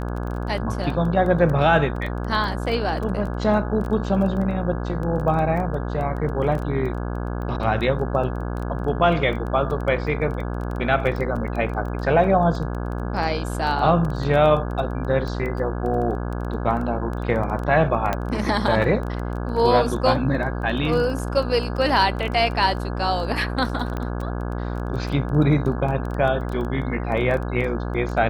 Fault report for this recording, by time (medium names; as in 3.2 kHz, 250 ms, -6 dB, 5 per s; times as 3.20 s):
buzz 60 Hz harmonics 28 -27 dBFS
crackle 12 per s -28 dBFS
1.96 s: dropout 3.9 ms
18.13 s: pop -9 dBFS
23.97 s: pop -16 dBFS